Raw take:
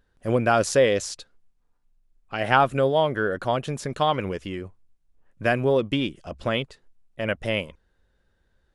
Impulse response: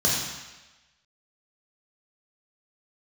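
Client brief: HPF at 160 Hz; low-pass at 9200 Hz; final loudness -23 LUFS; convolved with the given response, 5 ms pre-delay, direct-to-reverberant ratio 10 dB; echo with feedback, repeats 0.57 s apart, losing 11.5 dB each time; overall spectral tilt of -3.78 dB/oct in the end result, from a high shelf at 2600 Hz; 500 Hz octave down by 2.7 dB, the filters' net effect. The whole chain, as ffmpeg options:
-filter_complex "[0:a]highpass=160,lowpass=9.2k,equalizer=f=500:t=o:g=-3,highshelf=f=2.6k:g=-4.5,aecho=1:1:570|1140|1710:0.266|0.0718|0.0194,asplit=2[a][b];[1:a]atrim=start_sample=2205,adelay=5[c];[b][c]afir=irnorm=-1:irlink=0,volume=-24dB[d];[a][d]amix=inputs=2:normalize=0,volume=3dB"

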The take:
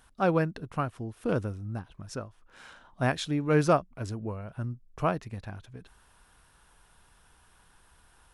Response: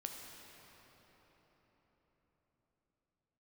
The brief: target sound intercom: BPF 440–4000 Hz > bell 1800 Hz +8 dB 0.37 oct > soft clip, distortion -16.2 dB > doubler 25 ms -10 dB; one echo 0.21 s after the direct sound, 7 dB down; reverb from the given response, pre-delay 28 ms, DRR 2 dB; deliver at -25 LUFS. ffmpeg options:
-filter_complex "[0:a]aecho=1:1:210:0.447,asplit=2[a][b];[1:a]atrim=start_sample=2205,adelay=28[c];[b][c]afir=irnorm=-1:irlink=0,volume=0dB[d];[a][d]amix=inputs=2:normalize=0,highpass=440,lowpass=4k,equalizer=f=1.8k:t=o:w=0.37:g=8,asoftclip=threshold=-16.5dB,asplit=2[e][f];[f]adelay=25,volume=-10dB[g];[e][g]amix=inputs=2:normalize=0,volume=6dB"

